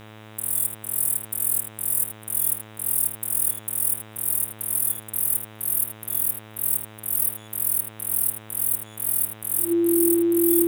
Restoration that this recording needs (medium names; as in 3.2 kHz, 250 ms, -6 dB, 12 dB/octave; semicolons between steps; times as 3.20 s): de-hum 108.2 Hz, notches 36; band-stop 340 Hz, Q 30; expander -36 dBFS, range -21 dB; inverse comb 79 ms -11.5 dB